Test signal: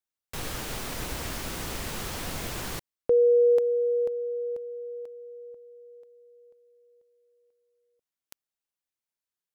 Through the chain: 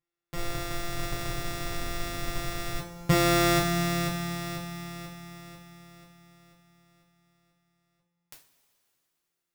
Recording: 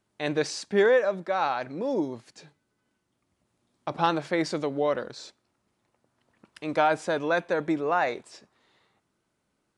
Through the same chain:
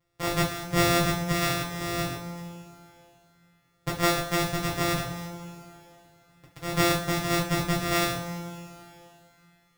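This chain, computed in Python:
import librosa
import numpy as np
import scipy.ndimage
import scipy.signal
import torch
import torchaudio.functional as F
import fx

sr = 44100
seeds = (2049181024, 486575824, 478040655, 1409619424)

y = np.r_[np.sort(x[:len(x) // 256 * 256].reshape(-1, 256), axis=1).ravel(), x[len(x) // 256 * 256:]]
y = y + 0.35 * np.pad(y, (int(7.3 * sr / 1000.0), 0))[:len(y)]
y = fx.rev_double_slope(y, sr, seeds[0], early_s=0.32, late_s=3.1, knee_db=-19, drr_db=-3.5)
y = y * librosa.db_to_amplitude(-2.0)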